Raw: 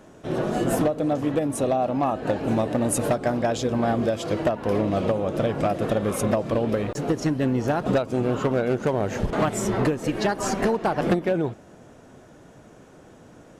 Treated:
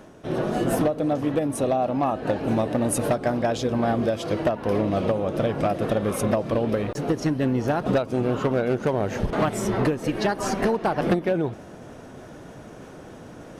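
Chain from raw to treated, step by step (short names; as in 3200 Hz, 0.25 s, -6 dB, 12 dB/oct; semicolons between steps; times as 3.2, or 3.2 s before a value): bell 7300 Hz -7 dB 0.22 oct; reverse; upward compressor, threshold -33 dBFS; reverse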